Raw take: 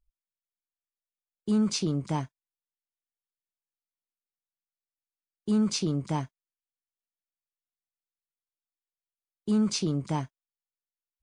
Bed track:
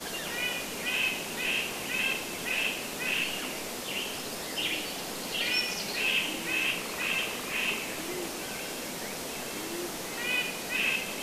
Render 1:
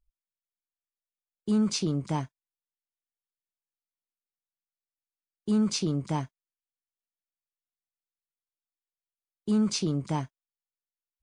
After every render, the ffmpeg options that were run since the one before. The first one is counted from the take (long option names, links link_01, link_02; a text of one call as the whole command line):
ffmpeg -i in.wav -af anull out.wav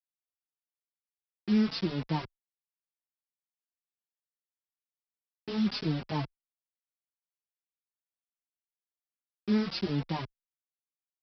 ffmpeg -i in.wav -filter_complex "[0:a]aresample=11025,acrusher=bits=5:mix=0:aa=0.000001,aresample=44100,asplit=2[link_01][link_02];[link_02]adelay=4.1,afreqshift=2.9[link_03];[link_01][link_03]amix=inputs=2:normalize=1" out.wav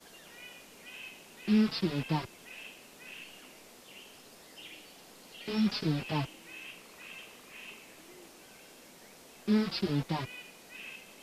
ffmpeg -i in.wav -i bed.wav -filter_complex "[1:a]volume=-17.5dB[link_01];[0:a][link_01]amix=inputs=2:normalize=0" out.wav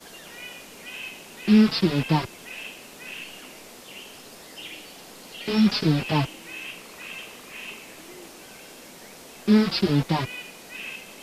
ffmpeg -i in.wav -af "volume=9.5dB" out.wav